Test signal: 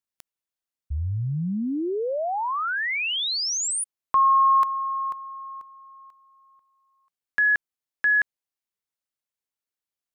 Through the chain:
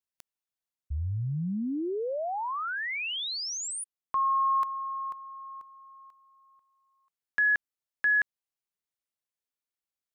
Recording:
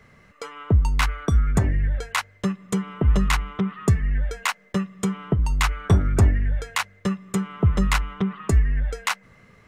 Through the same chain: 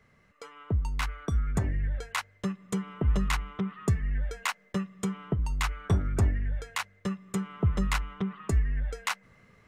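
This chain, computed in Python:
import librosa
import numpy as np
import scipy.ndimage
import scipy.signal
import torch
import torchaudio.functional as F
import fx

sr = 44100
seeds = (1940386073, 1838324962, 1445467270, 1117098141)

y = fx.rider(x, sr, range_db=4, speed_s=2.0)
y = F.gain(torch.from_numpy(y), -8.0).numpy()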